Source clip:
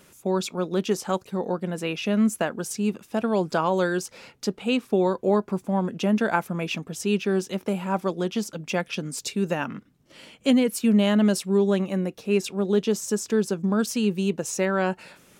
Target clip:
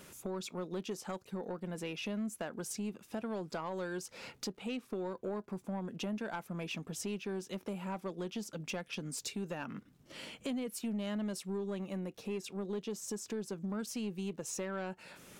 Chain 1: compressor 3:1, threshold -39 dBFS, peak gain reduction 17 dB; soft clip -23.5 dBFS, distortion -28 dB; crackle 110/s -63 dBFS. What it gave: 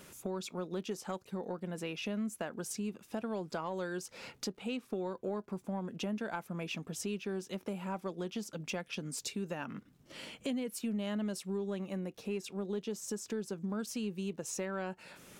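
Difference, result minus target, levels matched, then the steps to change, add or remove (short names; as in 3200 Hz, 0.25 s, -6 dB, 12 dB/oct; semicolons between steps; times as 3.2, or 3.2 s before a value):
soft clip: distortion -10 dB
change: soft clip -30 dBFS, distortion -18 dB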